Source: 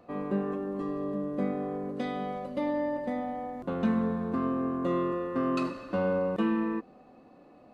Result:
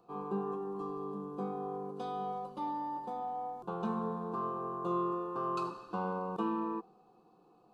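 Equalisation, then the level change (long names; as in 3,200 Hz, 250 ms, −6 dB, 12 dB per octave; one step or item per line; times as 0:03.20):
low-shelf EQ 130 Hz −7 dB
dynamic equaliser 850 Hz, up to +7 dB, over −46 dBFS, Q 1
phaser with its sweep stopped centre 390 Hz, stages 8
−4.0 dB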